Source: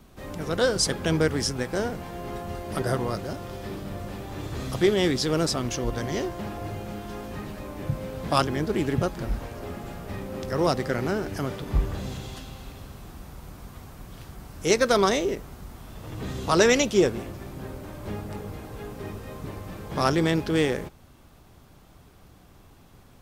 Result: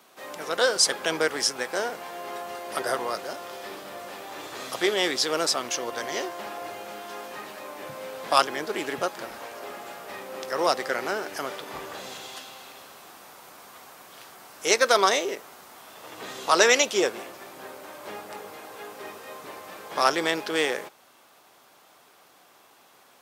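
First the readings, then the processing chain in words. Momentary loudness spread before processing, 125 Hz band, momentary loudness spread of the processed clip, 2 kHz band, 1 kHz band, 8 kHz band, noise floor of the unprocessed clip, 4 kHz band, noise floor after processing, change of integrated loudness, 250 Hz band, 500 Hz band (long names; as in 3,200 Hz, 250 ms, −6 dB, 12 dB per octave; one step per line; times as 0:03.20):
20 LU, −21.0 dB, 21 LU, +4.0 dB, +3.5 dB, +4.0 dB, −53 dBFS, +4.0 dB, −57 dBFS, +1.0 dB, −8.5 dB, −1.5 dB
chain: high-pass filter 600 Hz 12 dB per octave
level +4 dB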